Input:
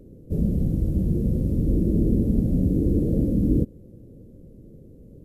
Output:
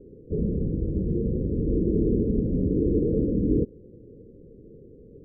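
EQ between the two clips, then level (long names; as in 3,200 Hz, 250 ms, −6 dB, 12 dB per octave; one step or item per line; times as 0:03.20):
low-pass with resonance 440 Hz, resonance Q 4.5
high-frequency loss of the air 470 metres
−5.0 dB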